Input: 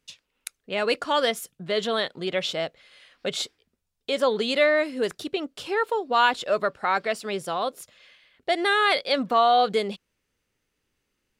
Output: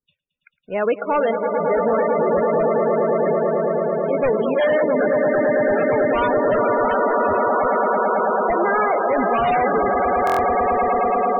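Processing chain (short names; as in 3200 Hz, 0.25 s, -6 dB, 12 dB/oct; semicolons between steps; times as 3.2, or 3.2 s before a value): LPF 1500 Hz 12 dB/oct; swelling echo 0.11 s, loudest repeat 8, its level -6.5 dB; power-law curve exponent 1.4; in parallel at -7 dB: sine folder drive 17 dB, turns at -6 dBFS; on the sum: loudest bins only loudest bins 32; stuck buffer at 10.25, samples 1024, times 5; gain -2 dB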